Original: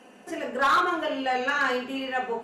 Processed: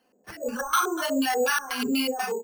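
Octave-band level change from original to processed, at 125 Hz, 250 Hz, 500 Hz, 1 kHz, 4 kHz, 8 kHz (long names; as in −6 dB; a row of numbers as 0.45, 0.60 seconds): can't be measured, +5.0 dB, +1.0 dB, −3.0 dB, +3.0 dB, +14.0 dB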